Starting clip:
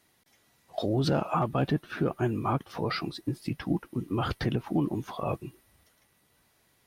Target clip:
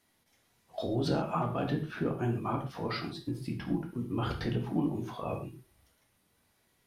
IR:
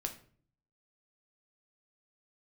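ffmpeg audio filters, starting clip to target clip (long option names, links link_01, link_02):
-filter_complex "[1:a]atrim=start_sample=2205,atrim=end_sample=3969,asetrate=27783,aresample=44100[link_01];[0:a][link_01]afir=irnorm=-1:irlink=0,volume=-6.5dB"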